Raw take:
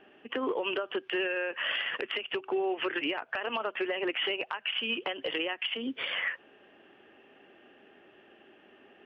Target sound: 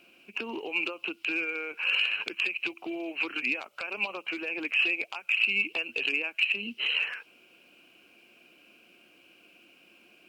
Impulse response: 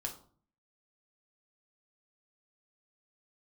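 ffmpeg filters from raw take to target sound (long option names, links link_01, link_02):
-af "aexciter=amount=14.5:drive=6.1:freq=3200,asetrate=38808,aresample=44100,volume=-6dB"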